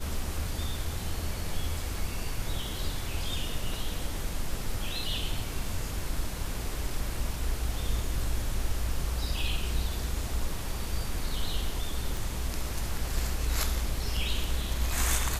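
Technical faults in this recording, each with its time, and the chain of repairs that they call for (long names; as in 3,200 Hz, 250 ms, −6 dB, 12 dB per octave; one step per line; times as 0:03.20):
0:12.17: click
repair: click removal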